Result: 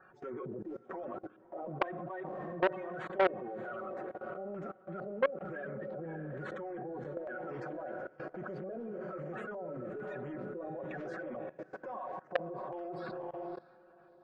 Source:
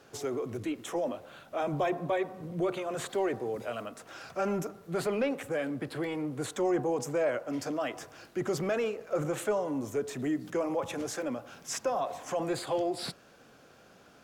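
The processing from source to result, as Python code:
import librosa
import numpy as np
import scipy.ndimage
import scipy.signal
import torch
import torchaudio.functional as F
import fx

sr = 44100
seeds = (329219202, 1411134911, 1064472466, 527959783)

y = fx.spec_quant(x, sr, step_db=30)
y = y + 0.69 * np.pad(y, (int(5.4 * sr / 1000.0), 0))[:len(y)]
y = fx.filter_lfo_lowpass(y, sr, shape='square', hz=1.1, low_hz=620.0, high_hz=1500.0, q=2.2)
y = fx.echo_diffused(y, sr, ms=608, feedback_pct=43, wet_db=-10.5)
y = fx.level_steps(y, sr, step_db=20)
y = fx.transformer_sat(y, sr, knee_hz=1200.0)
y = y * librosa.db_to_amplitude(-1.0)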